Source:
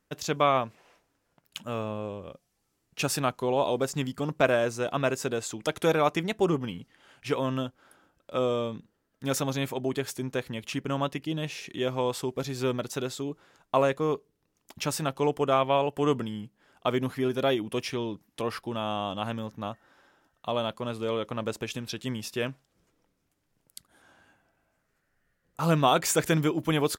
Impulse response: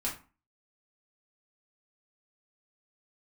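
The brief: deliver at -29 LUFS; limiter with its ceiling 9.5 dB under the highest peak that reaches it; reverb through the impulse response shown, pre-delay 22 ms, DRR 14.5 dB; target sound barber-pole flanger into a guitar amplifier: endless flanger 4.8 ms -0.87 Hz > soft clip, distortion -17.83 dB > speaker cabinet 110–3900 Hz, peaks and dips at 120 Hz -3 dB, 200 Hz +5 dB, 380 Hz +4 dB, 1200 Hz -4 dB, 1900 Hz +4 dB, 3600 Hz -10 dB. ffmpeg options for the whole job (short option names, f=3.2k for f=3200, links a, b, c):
-filter_complex "[0:a]alimiter=limit=-17dB:level=0:latency=1,asplit=2[a][b];[1:a]atrim=start_sample=2205,adelay=22[c];[b][c]afir=irnorm=-1:irlink=0,volume=-18.5dB[d];[a][d]amix=inputs=2:normalize=0,asplit=2[e][f];[f]adelay=4.8,afreqshift=-0.87[g];[e][g]amix=inputs=2:normalize=1,asoftclip=threshold=-22.5dB,highpass=110,equalizer=f=120:t=q:w=4:g=-3,equalizer=f=200:t=q:w=4:g=5,equalizer=f=380:t=q:w=4:g=4,equalizer=f=1.2k:t=q:w=4:g=-4,equalizer=f=1.9k:t=q:w=4:g=4,equalizer=f=3.6k:t=q:w=4:g=-10,lowpass=f=3.9k:w=0.5412,lowpass=f=3.9k:w=1.3066,volume=5.5dB"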